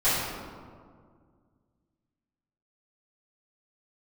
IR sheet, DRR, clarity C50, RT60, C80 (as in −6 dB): −16.0 dB, −2.0 dB, 2.0 s, 0.5 dB